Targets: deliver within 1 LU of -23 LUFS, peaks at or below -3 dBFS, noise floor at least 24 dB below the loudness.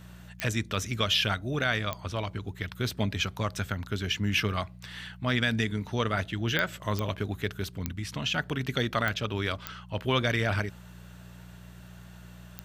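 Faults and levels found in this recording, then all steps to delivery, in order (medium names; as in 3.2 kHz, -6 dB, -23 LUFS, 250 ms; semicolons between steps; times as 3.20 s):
clicks found 8; hum 60 Hz; highest harmonic 180 Hz; hum level -47 dBFS; loudness -30.0 LUFS; peak level -12.5 dBFS; loudness target -23.0 LUFS
-> de-click; de-hum 60 Hz, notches 3; trim +7 dB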